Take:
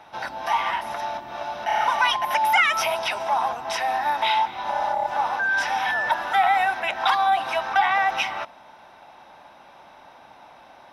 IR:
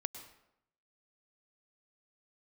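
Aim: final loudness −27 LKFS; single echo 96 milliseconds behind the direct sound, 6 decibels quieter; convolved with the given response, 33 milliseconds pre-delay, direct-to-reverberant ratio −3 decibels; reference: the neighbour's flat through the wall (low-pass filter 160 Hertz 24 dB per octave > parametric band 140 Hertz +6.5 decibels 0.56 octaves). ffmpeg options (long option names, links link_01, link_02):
-filter_complex "[0:a]aecho=1:1:96:0.501,asplit=2[link_01][link_02];[1:a]atrim=start_sample=2205,adelay=33[link_03];[link_02][link_03]afir=irnorm=-1:irlink=0,volume=3.5dB[link_04];[link_01][link_04]amix=inputs=2:normalize=0,lowpass=frequency=160:width=0.5412,lowpass=frequency=160:width=1.3066,equalizer=frequency=140:width_type=o:width=0.56:gain=6.5,volume=22.5dB"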